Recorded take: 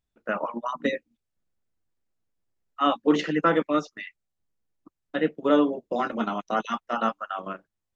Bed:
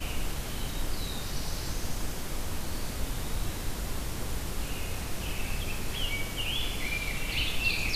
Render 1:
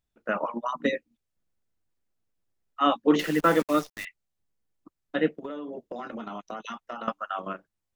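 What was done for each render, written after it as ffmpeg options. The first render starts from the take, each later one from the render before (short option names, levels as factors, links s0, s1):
-filter_complex "[0:a]asettb=1/sr,asplit=3[s0][s1][s2];[s0]atrim=end=3.194[s3];[s1]atrim=start=3.19:end=4.05,asetpts=PTS-STARTPTS,afade=t=in:d=0.004:c=qsin,afade=t=out:st=0.856:d=0.004:c=qsin,acrusher=bits=7:dc=4:mix=0:aa=0.000001[s4];[s2]atrim=start=4.046[s5];[s3][s4]acrossfade=d=0.004:c1=hsin:c2=qsin[s6];[s6][s5]acrossfade=d=0.004:c1=qsin:c2=hsin,asettb=1/sr,asplit=3[s7][s8][s9];[s7]atrim=end=5.374[s10];[s8]atrim=start=5.37:end=7.08,asetpts=PTS-STARTPTS,afade=t=in:d=0.004:c=qsin,afade=t=out:st=1.706:d=0.004:c=qsin,acompressor=threshold=0.0251:ratio=12:attack=3.2:release=140:knee=1:detection=peak[s11];[s9]atrim=start=7.076[s12];[s10][s11]acrossfade=d=0.004:c1=hsin:c2=qsin[s13];[s13][s12]acrossfade=d=0.004:c1=qsin:c2=hsin"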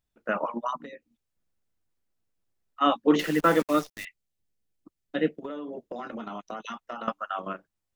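-filter_complex "[0:a]asplit=3[s0][s1][s2];[s0]afade=t=out:st=0.77:d=0.02[s3];[s1]acompressor=threshold=0.01:ratio=6:attack=3.2:release=140:knee=1:detection=peak,afade=t=in:st=0.77:d=0.02,afade=t=out:st=2.8:d=0.02[s4];[s2]afade=t=in:st=2.8:d=0.02[s5];[s3][s4][s5]amix=inputs=3:normalize=0,asettb=1/sr,asplit=3[s6][s7][s8];[s6]atrim=end=3.874[s9];[s7]atrim=start=3.87:end=5.42,asetpts=PTS-STARTPTS,afade=t=in:d=0.004:c=qsin,afade=t=out:st=1.546:d=0.004:c=qsin,equalizer=f=1100:t=o:w=1.2:g=-7[s10];[s8]atrim=start=5.416[s11];[s9][s10]acrossfade=d=0.004:c1=hsin:c2=qsin[s12];[s12][s11]acrossfade=d=0.004:c1=qsin:c2=hsin"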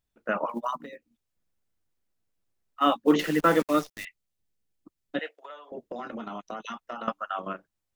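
-filter_complex "[0:a]asettb=1/sr,asplit=3[s0][s1][s2];[s0]atrim=end=0.494[s3];[s1]atrim=start=0.49:end=3.14,asetpts=PTS-STARTPTS,afade=t=in:d=0.004:c=qsin,afade=t=out:st=2.646:d=0.004:c=qsin,acrusher=bits=9:mode=log:mix=0:aa=0.000001[s4];[s2]atrim=start=3.136[s5];[s3][s4]acrossfade=d=0.004:c1=hsin:c2=qsin[s6];[s6][s5]acrossfade=d=0.004:c1=qsin:c2=hsin,asettb=1/sr,asplit=3[s7][s8][s9];[s7]atrim=end=5.194[s10];[s8]atrim=start=5.19:end=5.72,asetpts=PTS-STARTPTS,afade=t=in:d=0.004:c=qsin,afade=t=out:st=0.526:d=0.004:c=qsin,highpass=f=670:w=0.5412,highpass=f=670:w=1.3066[s11];[s9]atrim=start=5.716[s12];[s10][s11]acrossfade=d=0.004:c1=hsin:c2=qsin[s13];[s13][s12]acrossfade=d=0.004:c1=qsin:c2=hsin"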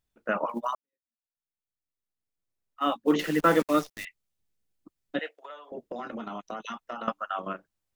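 -filter_complex "[0:a]asplit=2[s0][s1];[s0]atrim=end=0.75,asetpts=PTS-STARTPTS,afade=t=out:st=0.746:d=0.004:c=hsin[s2];[s1]atrim=start=0.75,asetpts=PTS-STARTPTS,afade=t=in:d=2.74:c=qua[s3];[s2][s3]concat=n=2:v=0:a=1"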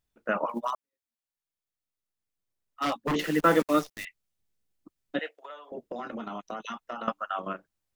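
-filter_complex "[0:a]asettb=1/sr,asplit=3[s0][s1][s2];[s0]atrim=end=0.674[s3];[s1]atrim=start=0.67:end=3.15,asetpts=PTS-STARTPTS,afade=t=in:d=0.004:c=qsin,afade=t=out:st=2.476:d=0.004:c=qsin,aeval=exprs='0.0841*(abs(mod(val(0)/0.0841+3,4)-2)-1)':c=same[s4];[s2]atrim=start=3.146[s5];[s3][s4]acrossfade=d=0.004:c1=hsin:c2=qsin[s6];[s6][s5]acrossfade=d=0.004:c1=qsin:c2=hsin"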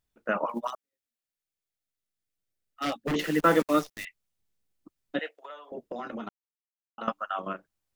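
-filter_complex "[0:a]asettb=1/sr,asplit=3[s0][s1][s2];[s0]atrim=end=0.674[s3];[s1]atrim=start=0.67:end=3.14,asetpts=PTS-STARTPTS,afade=t=in:d=0.004:c=qsin,afade=t=out:st=2.466:d=0.004:c=qsin,equalizer=f=1000:t=o:w=0.33:g=-14[s4];[s2]atrim=start=3.136[s5];[s3][s4]acrossfade=d=0.004:c1=hsin:c2=qsin[s6];[s6][s5]acrossfade=d=0.004:c1=qsin:c2=hsin,asplit=3[s7][s8][s9];[s7]atrim=end=6.29,asetpts=PTS-STARTPTS,afade=t=out:st=6.286:d=0.004:c=hsin[s10];[s8]atrim=start=6.29:end=6.98,asetpts=PTS-STARTPTS,volume=0[s11];[s9]atrim=start=6.98,asetpts=PTS-STARTPTS,afade=t=in:d=0.004:c=hsin[s12];[s10][s11][s12]concat=n=3:v=0:a=1"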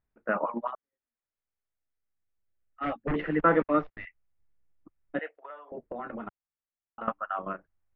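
-af "lowpass=f=2100:w=0.5412,lowpass=f=2100:w=1.3066,asubboost=boost=3:cutoff=110"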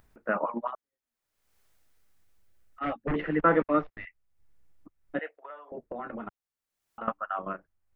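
-af "acompressor=mode=upward:threshold=0.00398:ratio=2.5"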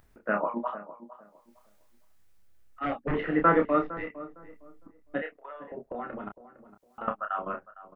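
-filter_complex "[0:a]asplit=2[s0][s1];[s1]adelay=29,volume=0.531[s2];[s0][s2]amix=inputs=2:normalize=0,asplit=2[s3][s4];[s4]adelay=458,lowpass=f=1200:p=1,volume=0.188,asplit=2[s5][s6];[s6]adelay=458,lowpass=f=1200:p=1,volume=0.25,asplit=2[s7][s8];[s8]adelay=458,lowpass=f=1200:p=1,volume=0.25[s9];[s3][s5][s7][s9]amix=inputs=4:normalize=0"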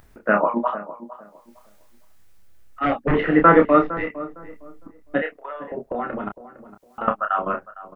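-af "volume=2.99,alimiter=limit=0.794:level=0:latency=1"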